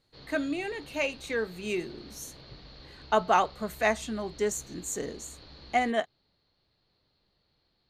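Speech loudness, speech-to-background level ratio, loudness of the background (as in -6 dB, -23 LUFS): -30.0 LUFS, 19.5 dB, -49.5 LUFS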